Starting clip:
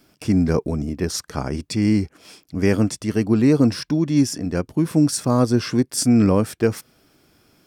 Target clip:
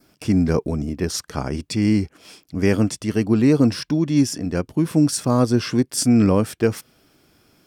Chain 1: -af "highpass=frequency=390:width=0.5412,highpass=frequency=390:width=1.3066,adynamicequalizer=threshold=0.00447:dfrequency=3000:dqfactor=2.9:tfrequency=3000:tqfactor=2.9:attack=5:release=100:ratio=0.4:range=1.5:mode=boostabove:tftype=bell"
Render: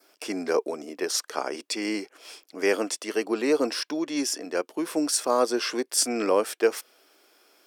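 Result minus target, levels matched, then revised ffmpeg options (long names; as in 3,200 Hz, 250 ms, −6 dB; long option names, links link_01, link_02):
500 Hz band +5.0 dB
-af "adynamicequalizer=threshold=0.00447:dfrequency=3000:dqfactor=2.9:tfrequency=3000:tqfactor=2.9:attack=5:release=100:ratio=0.4:range=1.5:mode=boostabove:tftype=bell"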